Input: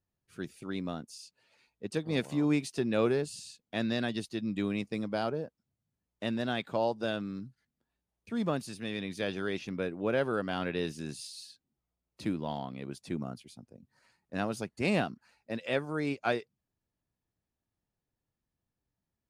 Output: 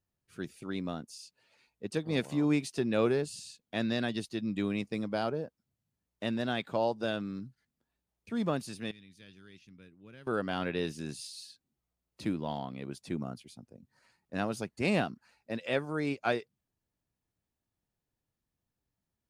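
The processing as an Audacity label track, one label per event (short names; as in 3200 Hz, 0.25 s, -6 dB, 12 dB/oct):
8.910000	10.270000	passive tone stack bass-middle-treble 6-0-2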